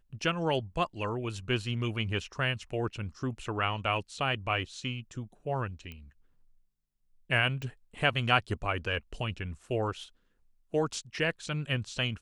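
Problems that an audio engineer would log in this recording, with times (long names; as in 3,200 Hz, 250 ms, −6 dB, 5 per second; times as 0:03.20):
0:05.92: click −29 dBFS
0:07.62: click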